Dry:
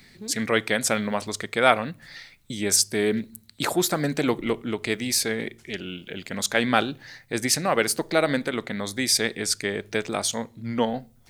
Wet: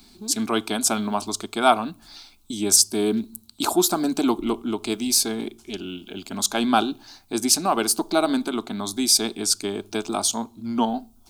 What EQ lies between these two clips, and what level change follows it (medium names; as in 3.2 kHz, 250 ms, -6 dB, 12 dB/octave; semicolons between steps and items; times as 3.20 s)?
static phaser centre 510 Hz, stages 6; +5.0 dB